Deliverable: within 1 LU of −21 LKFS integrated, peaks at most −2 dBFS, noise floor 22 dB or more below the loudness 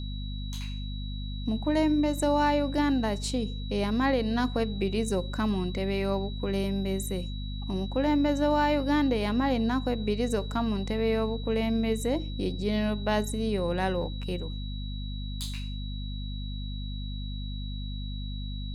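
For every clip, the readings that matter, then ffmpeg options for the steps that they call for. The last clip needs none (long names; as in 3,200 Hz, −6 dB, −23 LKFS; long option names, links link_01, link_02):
mains hum 50 Hz; hum harmonics up to 250 Hz; level of the hum −32 dBFS; interfering tone 3,900 Hz; level of the tone −44 dBFS; integrated loudness −29.5 LKFS; sample peak −13.5 dBFS; target loudness −21.0 LKFS
→ -af "bandreject=frequency=50:width_type=h:width=4,bandreject=frequency=100:width_type=h:width=4,bandreject=frequency=150:width_type=h:width=4,bandreject=frequency=200:width_type=h:width=4,bandreject=frequency=250:width_type=h:width=4"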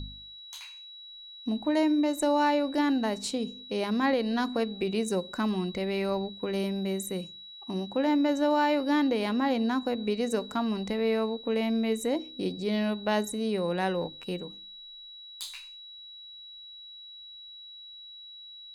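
mains hum none found; interfering tone 3,900 Hz; level of the tone −44 dBFS
→ -af "bandreject=frequency=3900:width=30"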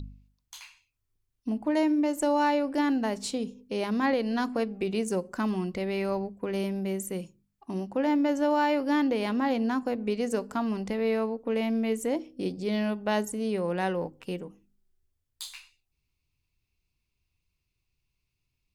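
interfering tone none found; integrated loudness −29.0 LKFS; sample peak −15.0 dBFS; target loudness −21.0 LKFS
→ -af "volume=8dB"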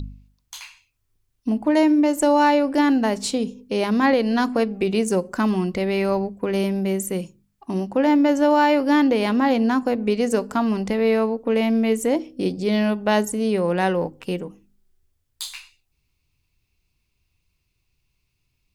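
integrated loudness −21.0 LKFS; sample peak −7.0 dBFS; background noise floor −73 dBFS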